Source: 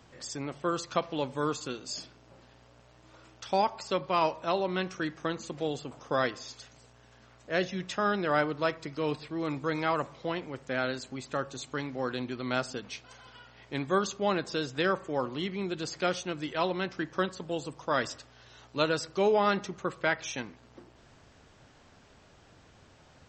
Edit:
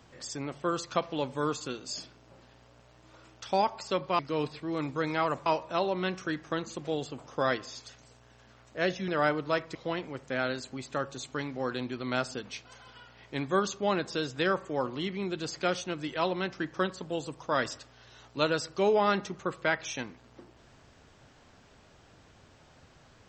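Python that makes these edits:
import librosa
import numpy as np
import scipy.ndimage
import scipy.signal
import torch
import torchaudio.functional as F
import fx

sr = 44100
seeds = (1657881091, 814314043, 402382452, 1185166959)

y = fx.edit(x, sr, fx.cut(start_s=7.81, length_s=0.39),
    fx.move(start_s=8.87, length_s=1.27, to_s=4.19), tone=tone)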